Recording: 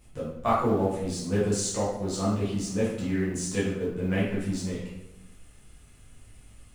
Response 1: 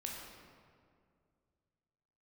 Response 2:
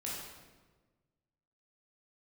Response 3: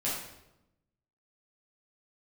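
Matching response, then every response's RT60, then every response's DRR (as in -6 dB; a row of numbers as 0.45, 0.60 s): 3; 2.2, 1.3, 0.90 s; -1.5, -6.0, -8.5 dB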